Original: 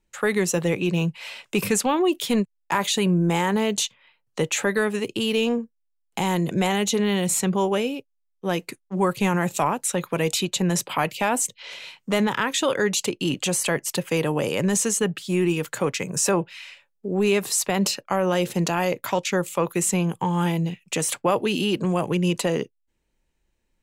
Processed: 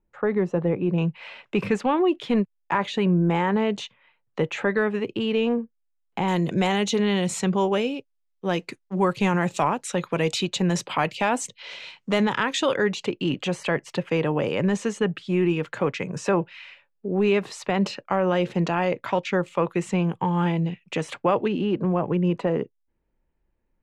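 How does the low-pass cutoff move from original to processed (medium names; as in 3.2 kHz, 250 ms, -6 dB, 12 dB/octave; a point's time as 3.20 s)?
1.1 kHz
from 0.98 s 2.3 kHz
from 6.28 s 5.2 kHz
from 12.76 s 2.8 kHz
from 21.48 s 1.5 kHz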